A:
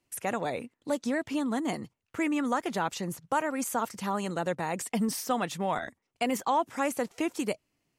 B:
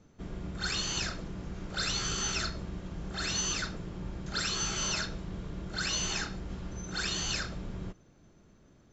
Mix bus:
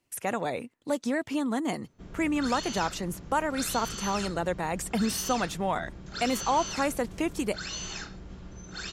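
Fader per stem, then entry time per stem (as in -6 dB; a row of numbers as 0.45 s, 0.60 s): +1.0 dB, -4.5 dB; 0.00 s, 1.80 s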